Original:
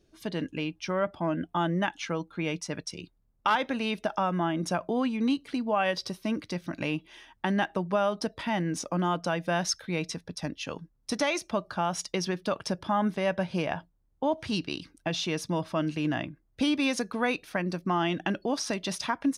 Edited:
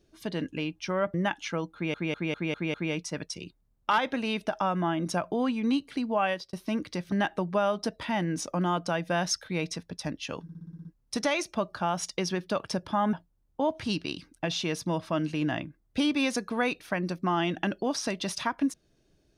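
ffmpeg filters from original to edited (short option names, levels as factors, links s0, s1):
-filter_complex "[0:a]asplit=17[s0][s1][s2][s3][s4][s5][s6][s7][s8][s9][s10][s11][s12][s13][s14][s15][s16];[s0]atrim=end=1.142[s17];[s1]atrim=start=1.708:end=2.512[s18];[s2]atrim=start=2.308:end=2.512[s19];[s3]atrim=start=2.308:end=2.512[s20];[s4]atrim=start=2.308:end=2.512[s21];[s5]atrim=start=2.308:end=2.512[s22];[s6]atrim=start=2.308:end=6.1,asetpts=PTS-STARTPTS,afade=t=out:st=3.512:d=0.28[s23];[s7]atrim=start=6.1:end=6.692,asetpts=PTS-STARTPTS,afade=t=in:d=0.004:c=hsin[s24];[s8]atrim=start=7.498:end=10.872[s25];[s9]atrim=start=10.808:end=10.872[s26];[s10]atrim=start=10.808:end=10.872[s27];[s11]atrim=start=10.808:end=10.872[s28];[s12]atrim=start=10.808:end=10.872[s29];[s13]atrim=start=10.808:end=10.872[s30];[s14]atrim=start=10.808:end=10.872[s31];[s15]atrim=start=10.808:end=13.092[s32];[s16]atrim=start=13.758[s33];[s17][s18]acrossfade=d=0.004:c1=hsin:c2=hsin[s34];[s34][s19]acrossfade=d=0.004:c1=hsin:c2=hsin[s35];[s35][s20]acrossfade=d=0.004:c1=hsin:c2=hsin[s36];[s36][s21]acrossfade=d=0.004:c1=hsin:c2=hsin[s37];[s37][s22]acrossfade=d=0.004:c1=hsin:c2=hsin[s38];[s23][s24]concat=n=2:v=0:a=1[s39];[s38][s39]acrossfade=d=0.004:c1=hsin:c2=hsin[s40];[s40][s25]acrossfade=d=0.004:c1=hsin:c2=hsin[s41];[s41][s26]acrossfade=d=0.004:c1=hsin:c2=hsin[s42];[s42][s27]acrossfade=d=0.004:c1=hsin:c2=hsin[s43];[s43][s28]acrossfade=d=0.004:c1=hsin:c2=hsin[s44];[s44][s29]acrossfade=d=0.004:c1=hsin:c2=hsin[s45];[s45][s30]acrossfade=d=0.004:c1=hsin:c2=hsin[s46];[s46][s31]acrossfade=d=0.004:c1=hsin:c2=hsin[s47];[s47][s32]acrossfade=d=0.004:c1=hsin:c2=hsin[s48];[s48][s33]acrossfade=d=0.004:c1=hsin:c2=hsin"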